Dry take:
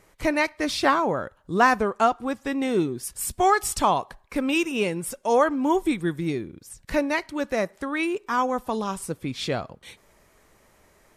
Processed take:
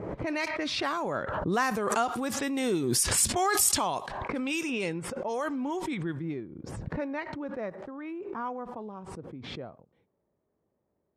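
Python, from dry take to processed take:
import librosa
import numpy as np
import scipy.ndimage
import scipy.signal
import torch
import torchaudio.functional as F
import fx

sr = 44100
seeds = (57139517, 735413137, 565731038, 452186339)

p1 = fx.doppler_pass(x, sr, speed_mps=8, closest_m=6.9, pass_at_s=2.72)
p2 = scipy.signal.sosfilt(scipy.signal.butter(2, 99.0, 'highpass', fs=sr, output='sos'), p1)
p3 = fx.env_lowpass(p2, sr, base_hz=530.0, full_db=-25.0)
p4 = fx.over_compress(p3, sr, threshold_db=-35.0, ratio=-1.0)
p5 = p3 + (p4 * 10.0 ** (3.0 / 20.0))
p6 = fx.high_shelf(p5, sr, hz=3800.0, db=9.5)
p7 = fx.pre_swell(p6, sr, db_per_s=29.0)
y = p7 * 10.0 ** (-7.0 / 20.0)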